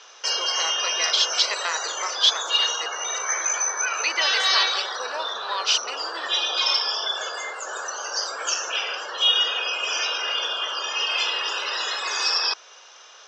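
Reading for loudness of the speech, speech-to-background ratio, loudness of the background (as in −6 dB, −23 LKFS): −25.0 LKFS, −1.5 dB, −23.5 LKFS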